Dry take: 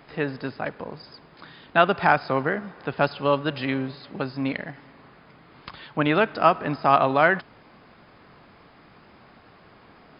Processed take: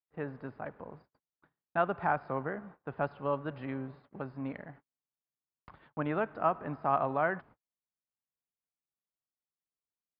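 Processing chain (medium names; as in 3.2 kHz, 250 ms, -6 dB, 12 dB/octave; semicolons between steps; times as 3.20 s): peaking EQ 320 Hz -4.5 dB 2.6 oct; gate -43 dBFS, range -46 dB; low-pass 1.2 kHz 12 dB/octave; trim -7 dB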